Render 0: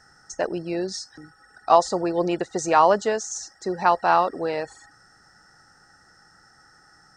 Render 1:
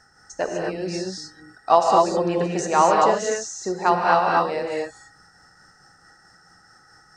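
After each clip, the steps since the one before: tremolo 4.6 Hz, depth 39%; gated-style reverb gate 270 ms rising, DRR -1 dB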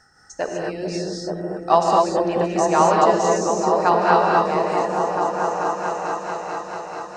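delay with an opening low-pass 439 ms, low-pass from 400 Hz, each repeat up 1 oct, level 0 dB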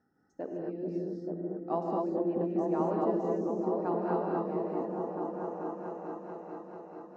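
band-pass filter 270 Hz, Q 2.3; trim -2.5 dB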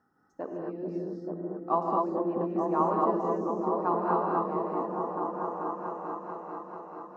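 peaking EQ 1.1 kHz +14.5 dB 0.62 oct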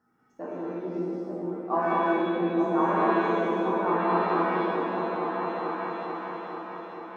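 pitch-shifted reverb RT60 1.1 s, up +7 st, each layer -8 dB, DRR -3.5 dB; trim -3 dB

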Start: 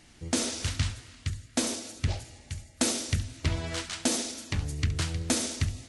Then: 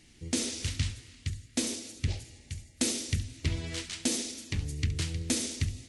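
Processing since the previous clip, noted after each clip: high-order bell 950 Hz -8.5 dB; trim -2 dB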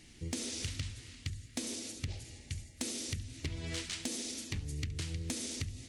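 compression 12:1, threshold -35 dBFS, peak gain reduction 12 dB; saturation -26.5 dBFS, distortion -21 dB; trim +1.5 dB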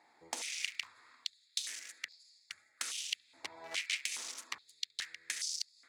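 local Wiener filter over 15 samples; step-sequenced high-pass 2.4 Hz 840–4800 Hz; trim +1.5 dB

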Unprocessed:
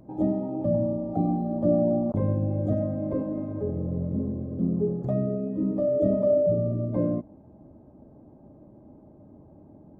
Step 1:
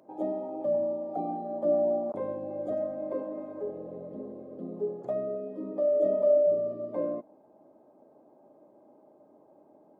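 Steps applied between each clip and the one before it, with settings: Chebyshev high-pass 530 Hz, order 2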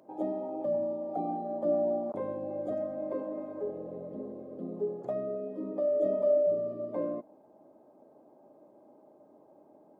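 dynamic bell 580 Hz, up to -3 dB, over -33 dBFS, Q 1.7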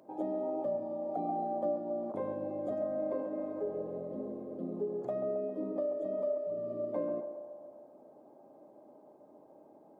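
compression, threshold -31 dBFS, peak gain reduction 9.5 dB; band-passed feedback delay 135 ms, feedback 70%, band-pass 700 Hz, level -7.5 dB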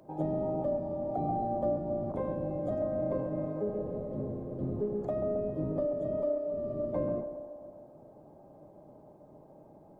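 octave divider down 1 oct, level +1 dB; trim +2 dB

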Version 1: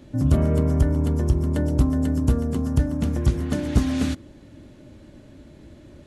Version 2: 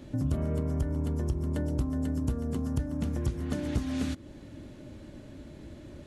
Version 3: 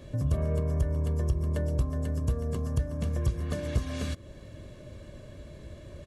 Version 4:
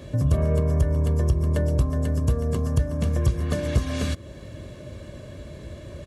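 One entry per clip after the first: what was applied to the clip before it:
compression 2.5:1, threshold -31 dBFS, peak gain reduction 12.5 dB
comb 1.8 ms, depth 62%
high-pass 48 Hz; trim +7 dB

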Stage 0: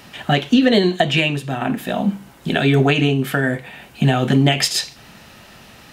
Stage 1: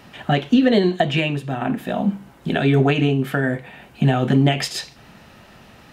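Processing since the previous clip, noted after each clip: treble shelf 2.6 kHz -8.5 dB; trim -1 dB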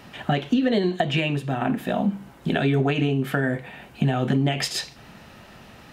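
compression 3:1, threshold -19 dBFS, peak gain reduction 7 dB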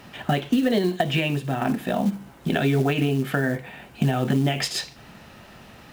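companded quantiser 6-bit

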